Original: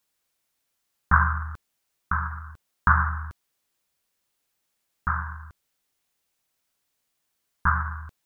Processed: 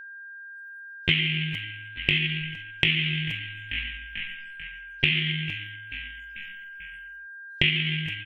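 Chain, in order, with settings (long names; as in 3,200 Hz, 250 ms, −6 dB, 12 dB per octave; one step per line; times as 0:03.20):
pitch shifter +12 semitones
high-shelf EQ 2,000 Hz +8.5 dB
hum removal 197 Hz, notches 39
on a send: echo with shifted repeats 441 ms, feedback 57%, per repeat −50 Hz, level −23.5 dB
on the sum: noise reduction from a noise print of the clip's start 28 dB
automatic gain control gain up to 10 dB
steady tone 1,600 Hz −43 dBFS
downward compressor 6 to 1, threshold −23 dBFS, peak gain reduction 12.5 dB
level +3.5 dB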